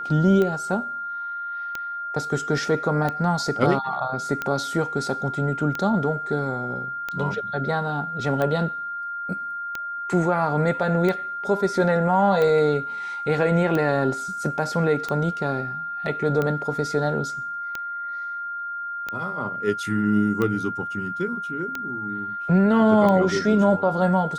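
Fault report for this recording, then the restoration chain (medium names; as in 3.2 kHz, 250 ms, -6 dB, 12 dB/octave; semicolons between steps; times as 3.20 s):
tick 45 rpm -13 dBFS
whine 1.4 kHz -28 dBFS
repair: de-click; band-stop 1.4 kHz, Q 30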